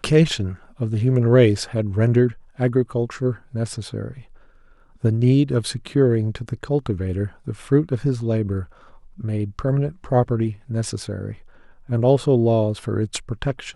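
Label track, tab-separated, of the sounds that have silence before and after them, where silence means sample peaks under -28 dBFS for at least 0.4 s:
5.040000	8.640000	sound
9.200000	11.330000	sound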